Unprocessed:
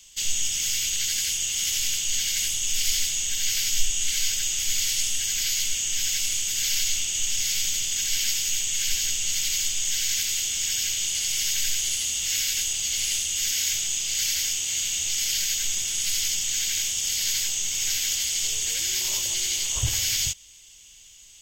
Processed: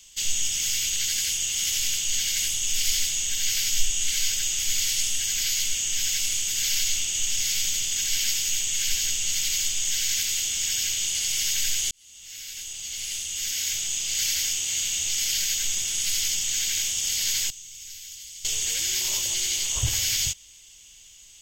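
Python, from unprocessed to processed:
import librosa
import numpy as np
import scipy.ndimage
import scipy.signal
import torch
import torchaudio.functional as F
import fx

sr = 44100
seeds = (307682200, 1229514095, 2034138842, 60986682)

y = fx.tone_stack(x, sr, knobs='6-0-2', at=(17.5, 18.45))
y = fx.edit(y, sr, fx.fade_in_span(start_s=11.91, length_s=2.32), tone=tone)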